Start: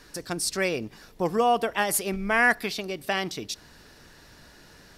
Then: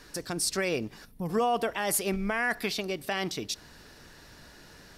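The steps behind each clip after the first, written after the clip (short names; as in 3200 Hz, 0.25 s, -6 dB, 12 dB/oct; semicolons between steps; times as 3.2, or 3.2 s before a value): spectral gain 1.05–1.29, 280–8500 Hz -13 dB; limiter -18.5 dBFS, peak gain reduction 9 dB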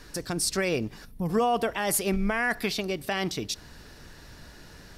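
low shelf 140 Hz +7.5 dB; gain +1.5 dB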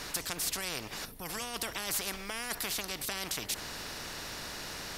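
spectral compressor 4:1; gain -1 dB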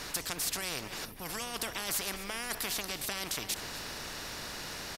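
outdoor echo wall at 43 m, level -11 dB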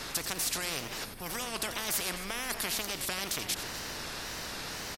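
outdoor echo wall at 15 m, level -10 dB; wow and flutter 120 cents; gain +1.5 dB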